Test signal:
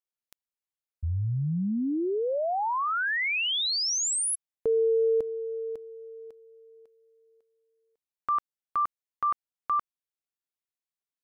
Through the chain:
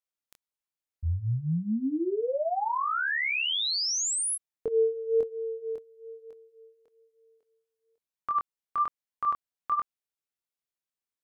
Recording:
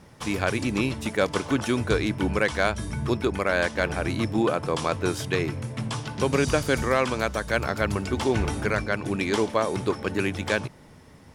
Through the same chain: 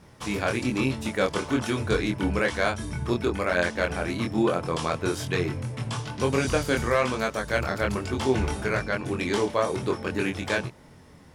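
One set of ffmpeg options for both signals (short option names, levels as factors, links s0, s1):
-af "flanger=delay=22.5:depth=3.1:speed=1.1,volume=1.26"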